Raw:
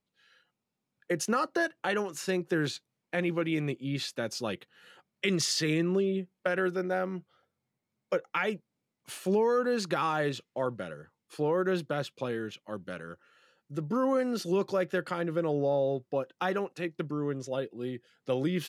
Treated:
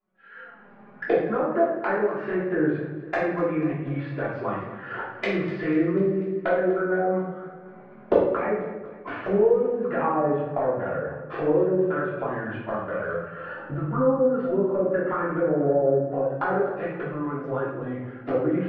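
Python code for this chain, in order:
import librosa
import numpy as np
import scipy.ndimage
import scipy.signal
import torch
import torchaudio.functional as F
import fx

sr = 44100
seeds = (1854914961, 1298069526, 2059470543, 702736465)

p1 = fx.recorder_agc(x, sr, target_db=-24.0, rise_db_per_s=44.0, max_gain_db=30)
p2 = scipy.signal.sosfilt(scipy.signal.butter(4, 1600.0, 'lowpass', fs=sr, output='sos'), p1)
p3 = fx.low_shelf(p2, sr, hz=330.0, db=-10.0)
p4 = fx.env_flanger(p3, sr, rest_ms=5.4, full_db=-27.5)
p5 = fx.dynamic_eq(p4, sr, hz=210.0, q=1.2, threshold_db=-48.0, ratio=4.0, max_db=-6)
p6 = fx.env_lowpass_down(p5, sr, base_hz=520.0, full_db=-30.5)
p7 = p6 + fx.echo_feedback(p6, sr, ms=246, feedback_pct=55, wet_db=-16.0, dry=0)
p8 = fx.room_shoebox(p7, sr, seeds[0], volume_m3=280.0, walls='mixed', distance_m=3.1)
y = p8 * 10.0 ** (5.0 / 20.0)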